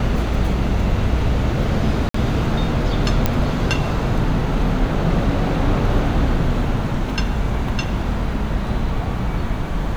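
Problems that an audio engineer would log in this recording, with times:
2.09–2.14 gap 54 ms
3.26 pop -3 dBFS

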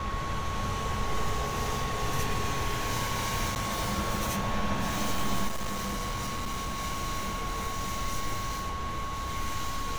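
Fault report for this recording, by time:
tone 1100 Hz -35 dBFS
3.55–3.56 gap 9.3 ms
5.47–6.8 clipped -28.5 dBFS

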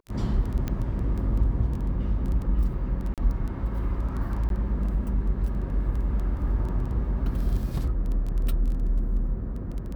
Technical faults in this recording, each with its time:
crackle 10/s -31 dBFS
0.68 pop -16 dBFS
3.14–3.18 gap 37 ms
4.49–4.5 gap 12 ms

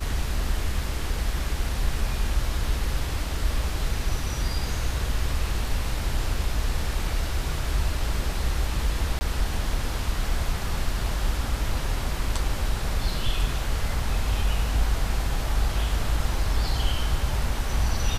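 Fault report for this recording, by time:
9.19–9.21 gap 20 ms

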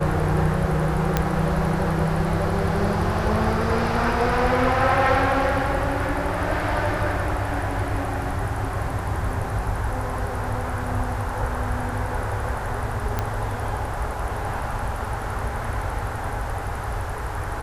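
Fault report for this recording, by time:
1.17 pop -5 dBFS
13.19 pop -10 dBFS

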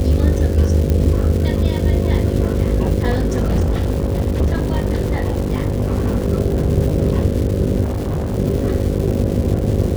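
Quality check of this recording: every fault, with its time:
buzz 50 Hz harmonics 11 -21 dBFS
crackle 540/s -25 dBFS
0.9 pop -7 dBFS
3.1–6.26 clipped -12.5 dBFS
7.83–8.38 clipped -17 dBFS

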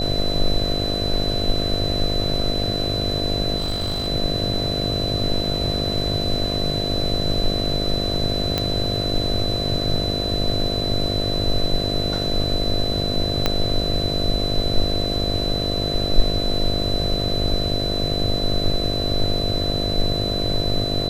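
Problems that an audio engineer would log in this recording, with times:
buzz 50 Hz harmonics 14 -26 dBFS
tone 4000 Hz -25 dBFS
3.57–4.08 clipped -19.5 dBFS
8.58 pop -6 dBFS
13.46 pop -4 dBFS

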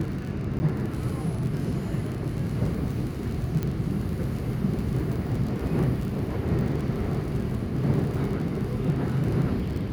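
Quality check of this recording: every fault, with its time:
crackle 36/s -31 dBFS
0.59–0.6 gap 10 ms
3.63 pop -16 dBFS

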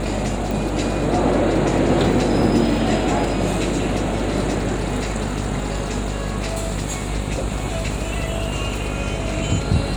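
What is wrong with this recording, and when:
buzz 50 Hz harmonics 27 -26 dBFS
0.51 pop

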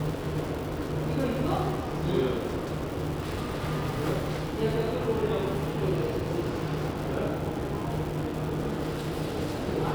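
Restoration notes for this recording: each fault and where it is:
crackle 370/s -35 dBFS

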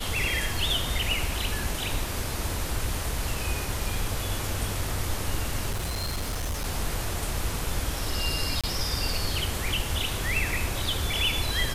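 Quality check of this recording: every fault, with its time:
5.7–6.66 clipped -26 dBFS
8.61–8.64 gap 26 ms

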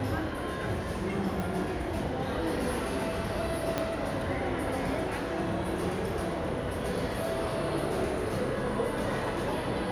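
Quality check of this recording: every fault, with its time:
1.4 pop
3.78 pop -14 dBFS

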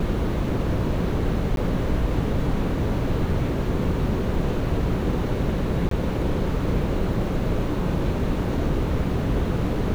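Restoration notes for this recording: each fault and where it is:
1.56–1.57 gap 12 ms
5.89–5.91 gap 23 ms

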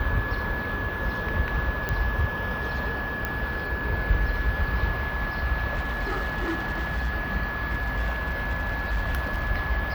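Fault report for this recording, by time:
tone 1700 Hz -31 dBFS
1.89 pop -13 dBFS
3.25 pop -13 dBFS
5.74–7.1 clipped -23 dBFS
7.71–9.49 clipped -21.5 dBFS

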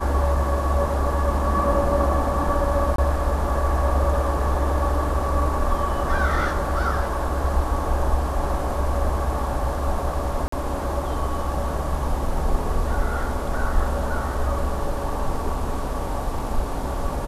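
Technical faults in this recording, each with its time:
2.96–2.98 gap 23 ms
10.48–10.52 gap 44 ms

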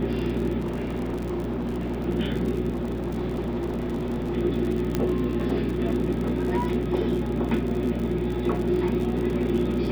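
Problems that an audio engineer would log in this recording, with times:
crackle 68/s -30 dBFS
hum 60 Hz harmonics 4 -30 dBFS
0.59–2.09 clipped -25 dBFS
2.7–4.37 clipped -24.5 dBFS
4.95 pop -11 dBFS

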